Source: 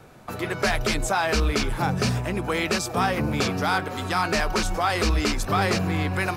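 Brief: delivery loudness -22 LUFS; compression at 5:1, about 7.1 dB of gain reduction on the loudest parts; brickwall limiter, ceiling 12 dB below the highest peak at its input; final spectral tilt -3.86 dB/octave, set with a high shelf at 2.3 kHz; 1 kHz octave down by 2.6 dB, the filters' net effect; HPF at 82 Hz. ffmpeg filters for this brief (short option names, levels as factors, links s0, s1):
-af "highpass=82,equalizer=f=1000:t=o:g=-5,highshelf=f=2300:g=6,acompressor=threshold=0.0501:ratio=5,volume=3.98,alimiter=limit=0.224:level=0:latency=1"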